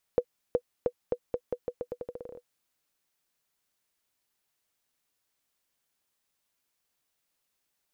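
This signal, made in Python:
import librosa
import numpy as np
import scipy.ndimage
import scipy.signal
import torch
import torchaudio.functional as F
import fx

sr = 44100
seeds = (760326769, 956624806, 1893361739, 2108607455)

y = fx.bouncing_ball(sr, first_gap_s=0.37, ratio=0.84, hz=490.0, decay_ms=65.0, level_db=-12.5)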